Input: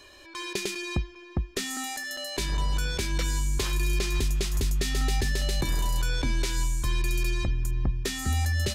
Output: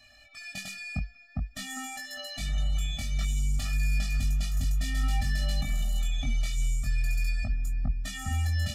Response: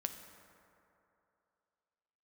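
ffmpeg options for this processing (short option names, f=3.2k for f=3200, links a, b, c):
-af "flanger=delay=20:depth=2.6:speed=0.52,afftfilt=real='re*eq(mod(floor(b*sr/1024/280),2),0)':imag='im*eq(mod(floor(b*sr/1024/280),2),0)':win_size=1024:overlap=0.75"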